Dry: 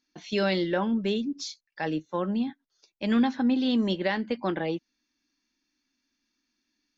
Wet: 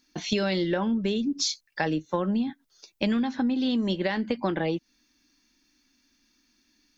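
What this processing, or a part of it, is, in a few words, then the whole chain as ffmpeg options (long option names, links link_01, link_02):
ASMR close-microphone chain: -af "lowshelf=frequency=140:gain=7,acompressor=threshold=-32dB:ratio=10,highshelf=frequency=6400:gain=6,volume=9dB"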